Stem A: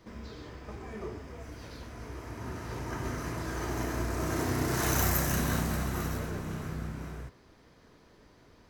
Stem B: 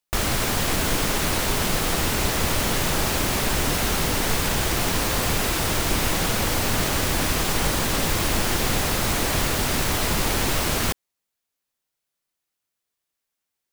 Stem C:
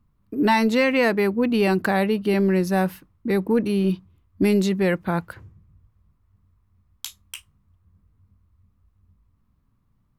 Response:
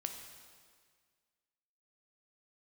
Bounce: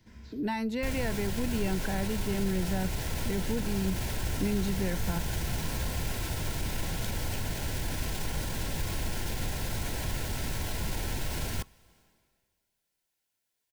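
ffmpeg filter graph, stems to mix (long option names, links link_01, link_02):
-filter_complex "[0:a]equalizer=frequency=540:width_type=o:width=2.1:gain=-12,volume=-7dB,asplit=2[link_01][link_02];[link_02]volume=-3dB[link_03];[1:a]alimiter=limit=-19dB:level=0:latency=1,adelay=700,volume=-0.5dB,asplit=2[link_04][link_05];[link_05]volume=-16.5dB[link_06];[2:a]volume=-3.5dB,asplit=2[link_07][link_08];[link_08]apad=whole_len=383602[link_09];[link_01][link_09]sidechaincompress=threshold=-31dB:ratio=8:attack=16:release=390[link_10];[3:a]atrim=start_sample=2205[link_11];[link_03][link_06]amix=inputs=2:normalize=0[link_12];[link_12][link_11]afir=irnorm=-1:irlink=0[link_13];[link_10][link_04][link_07][link_13]amix=inputs=4:normalize=0,acrossover=split=150[link_14][link_15];[link_15]acompressor=threshold=-51dB:ratio=1.5[link_16];[link_14][link_16]amix=inputs=2:normalize=0,asuperstop=centerf=1200:order=20:qfactor=5.9"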